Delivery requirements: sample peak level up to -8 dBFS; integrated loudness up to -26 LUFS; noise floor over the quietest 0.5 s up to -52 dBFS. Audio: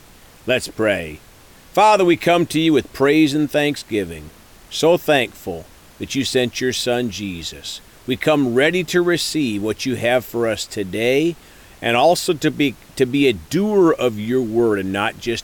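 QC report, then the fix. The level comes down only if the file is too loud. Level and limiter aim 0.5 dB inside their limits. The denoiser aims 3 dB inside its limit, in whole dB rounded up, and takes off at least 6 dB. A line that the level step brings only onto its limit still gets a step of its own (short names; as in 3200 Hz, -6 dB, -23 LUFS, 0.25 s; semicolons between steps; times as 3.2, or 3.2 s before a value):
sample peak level -5.0 dBFS: fail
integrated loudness -18.5 LUFS: fail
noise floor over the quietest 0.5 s -46 dBFS: fail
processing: gain -8 dB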